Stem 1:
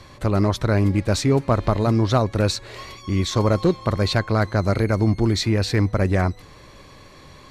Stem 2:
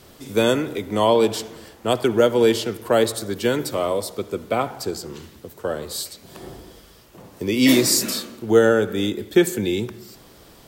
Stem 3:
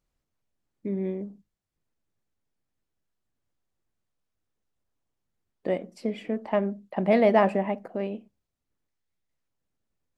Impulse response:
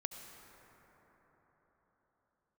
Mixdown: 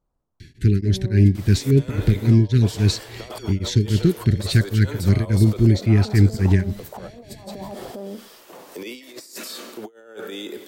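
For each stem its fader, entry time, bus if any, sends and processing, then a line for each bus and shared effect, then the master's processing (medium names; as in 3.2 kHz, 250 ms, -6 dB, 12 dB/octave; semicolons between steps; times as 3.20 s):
+1.0 dB, 0.40 s, no bus, no send, Chebyshev band-stop 410–1600 Hz, order 4; peaking EQ 120 Hz +7 dB 2.1 oct; tremolo of two beating tones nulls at 3.6 Hz
-1.0 dB, 1.35 s, bus A, no send, high-pass 410 Hz 12 dB/octave
-1.5 dB, 0.00 s, bus A, no send, resonant high shelf 1.5 kHz -12.5 dB, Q 1.5
bus A: 0.0 dB, compressor with a negative ratio -30 dBFS, ratio -0.5; peak limiter -25 dBFS, peak gain reduction 11.5 dB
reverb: none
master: none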